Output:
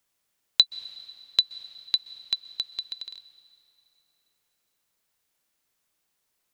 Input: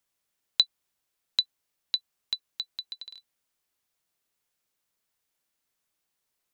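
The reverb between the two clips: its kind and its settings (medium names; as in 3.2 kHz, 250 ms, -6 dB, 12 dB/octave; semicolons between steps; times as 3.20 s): plate-style reverb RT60 3 s, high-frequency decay 0.85×, pre-delay 115 ms, DRR 16 dB; trim +4 dB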